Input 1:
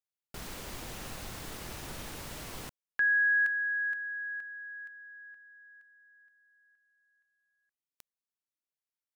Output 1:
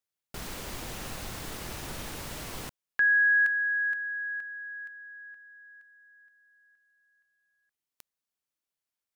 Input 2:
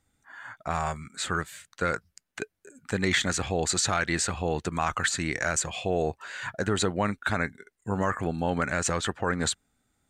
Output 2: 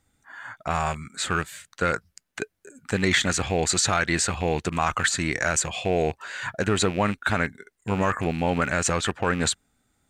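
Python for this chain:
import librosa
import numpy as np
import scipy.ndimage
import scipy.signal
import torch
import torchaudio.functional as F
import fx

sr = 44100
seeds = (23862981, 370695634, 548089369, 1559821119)

y = fx.rattle_buzz(x, sr, strikes_db=-33.0, level_db=-29.0)
y = y * 10.0 ** (3.5 / 20.0)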